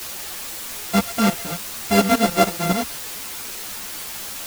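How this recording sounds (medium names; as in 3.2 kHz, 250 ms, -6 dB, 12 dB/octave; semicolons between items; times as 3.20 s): a buzz of ramps at a fixed pitch in blocks of 64 samples; tremolo saw up 7 Hz, depth 85%; a quantiser's noise floor 6-bit, dither triangular; a shimmering, thickened sound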